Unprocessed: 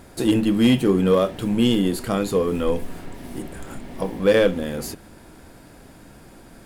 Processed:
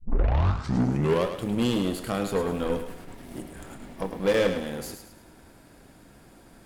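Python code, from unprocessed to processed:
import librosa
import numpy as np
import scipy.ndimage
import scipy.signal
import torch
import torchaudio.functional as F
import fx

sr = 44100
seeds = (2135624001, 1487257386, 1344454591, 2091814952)

y = fx.tape_start_head(x, sr, length_s=1.29)
y = fx.cheby_harmonics(y, sr, harmonics=(6,), levels_db=(-18,), full_scale_db=-8.0)
y = fx.echo_thinned(y, sr, ms=106, feedback_pct=40, hz=420.0, wet_db=-7.5)
y = y * librosa.db_to_amplitude(-6.5)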